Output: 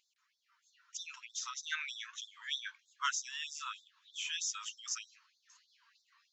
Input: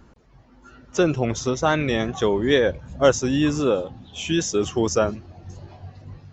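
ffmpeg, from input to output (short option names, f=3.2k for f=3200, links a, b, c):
-af "afftfilt=real='re*gte(b*sr/1024,880*pow(3500/880,0.5+0.5*sin(2*PI*3.2*pts/sr)))':imag='im*gte(b*sr/1024,880*pow(3500/880,0.5+0.5*sin(2*PI*3.2*pts/sr)))':win_size=1024:overlap=0.75,volume=-8dB"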